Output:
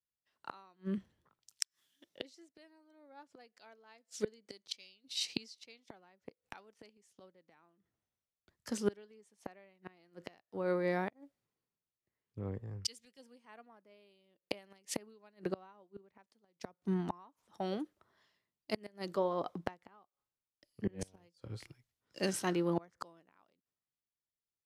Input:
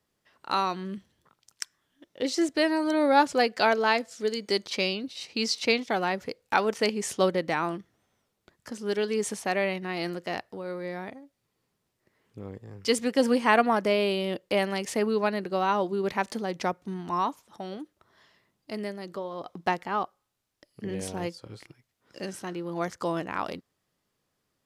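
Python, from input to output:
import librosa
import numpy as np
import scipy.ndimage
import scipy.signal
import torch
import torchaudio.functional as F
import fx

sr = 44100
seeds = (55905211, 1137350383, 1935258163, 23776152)

y = fx.tremolo_shape(x, sr, shape='triangle', hz=5.4, depth_pct=40, at=(14.48, 16.84))
y = fx.gate_flip(y, sr, shuts_db=-23.0, range_db=-28)
y = fx.band_widen(y, sr, depth_pct=70)
y = F.gain(torch.from_numpy(y), -2.0).numpy()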